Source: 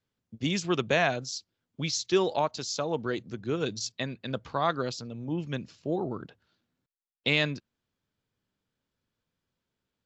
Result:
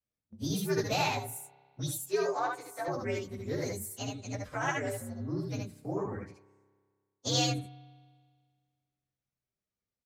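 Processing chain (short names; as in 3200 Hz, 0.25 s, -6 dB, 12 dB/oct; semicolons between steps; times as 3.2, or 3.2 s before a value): inharmonic rescaling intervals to 121%; 1.98–2.88 three-band isolator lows -23 dB, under 280 Hz, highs -13 dB, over 5600 Hz; on a send: early reflections 67 ms -6 dB, 77 ms -5.5 dB; on the sum: gate -52 dBFS, range -6 dB; spring tank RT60 1.8 s, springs 30 ms, chirp 50 ms, DRR 19.5 dB; gain -2 dB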